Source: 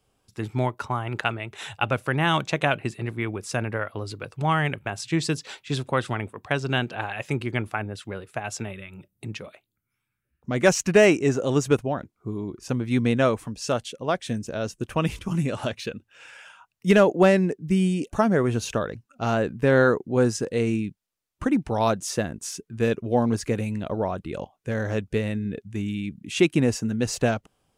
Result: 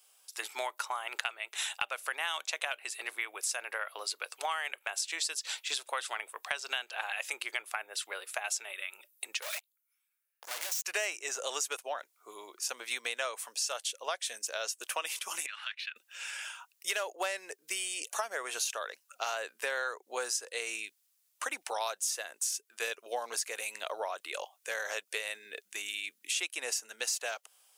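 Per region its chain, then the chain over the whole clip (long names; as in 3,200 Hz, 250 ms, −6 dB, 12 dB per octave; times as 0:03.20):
0:09.42–0:10.85: downward compressor 3 to 1, threshold −36 dBFS + leveller curve on the samples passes 5 + hard clipping −35.5 dBFS
0:15.46–0:15.96: inverse Chebyshev high-pass filter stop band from 250 Hz, stop band 80 dB + high-frequency loss of the air 410 metres
whole clip: high-pass filter 520 Hz 24 dB per octave; spectral tilt +4.5 dB per octave; downward compressor 5 to 1, threshold −32 dBFS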